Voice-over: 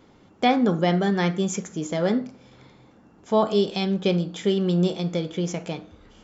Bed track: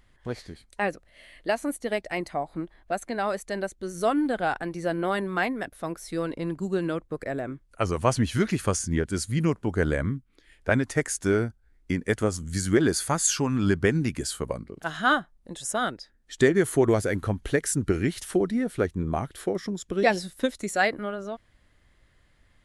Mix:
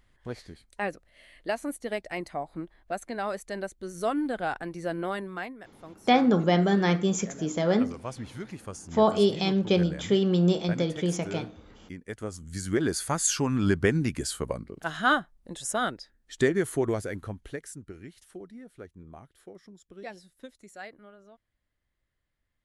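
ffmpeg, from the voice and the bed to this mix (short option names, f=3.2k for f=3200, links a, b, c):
-filter_complex "[0:a]adelay=5650,volume=-1dB[a];[1:a]volume=9.5dB,afade=t=out:st=5.01:d=0.57:silence=0.298538,afade=t=in:st=12.04:d=1.41:silence=0.211349,afade=t=out:st=15.86:d=1.99:silence=0.11885[b];[a][b]amix=inputs=2:normalize=0"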